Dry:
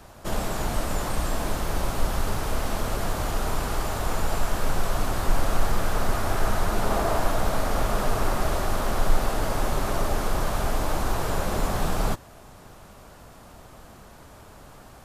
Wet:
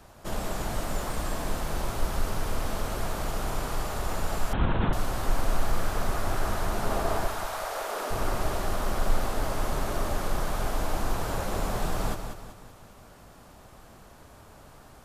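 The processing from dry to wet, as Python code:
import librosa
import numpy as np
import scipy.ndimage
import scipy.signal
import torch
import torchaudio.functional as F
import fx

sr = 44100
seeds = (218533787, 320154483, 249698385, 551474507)

y = fx.dmg_crackle(x, sr, seeds[0], per_s=590.0, level_db=-41.0, at=(0.79, 1.2), fade=0.02)
y = fx.highpass(y, sr, hz=fx.line((7.26, 940.0), (8.1, 270.0)), slope=24, at=(7.26, 8.1), fade=0.02)
y = fx.echo_feedback(y, sr, ms=190, feedback_pct=42, wet_db=-7.5)
y = fx.lpc_vocoder(y, sr, seeds[1], excitation='whisper', order=10, at=(4.53, 4.93))
y = F.gain(torch.from_numpy(y), -4.5).numpy()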